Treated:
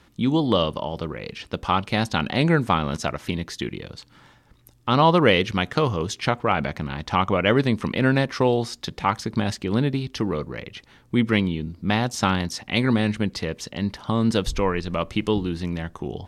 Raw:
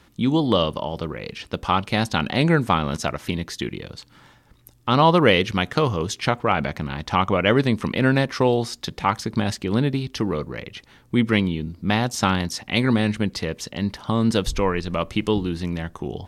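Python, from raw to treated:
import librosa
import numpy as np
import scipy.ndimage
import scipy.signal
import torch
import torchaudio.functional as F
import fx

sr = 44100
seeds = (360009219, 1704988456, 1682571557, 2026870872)

y = fx.high_shelf(x, sr, hz=11000.0, db=-6.0)
y = y * 10.0 ** (-1.0 / 20.0)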